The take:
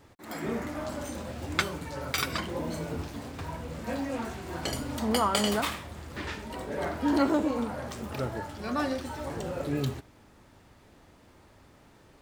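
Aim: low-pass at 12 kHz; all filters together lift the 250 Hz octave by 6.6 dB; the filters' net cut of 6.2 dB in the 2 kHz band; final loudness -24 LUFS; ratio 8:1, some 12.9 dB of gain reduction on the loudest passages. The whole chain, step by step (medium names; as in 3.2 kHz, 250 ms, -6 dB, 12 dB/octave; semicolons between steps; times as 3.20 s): low-pass 12 kHz; peaking EQ 250 Hz +8 dB; peaking EQ 2 kHz -8.5 dB; compression 8:1, threshold -30 dBFS; trim +11 dB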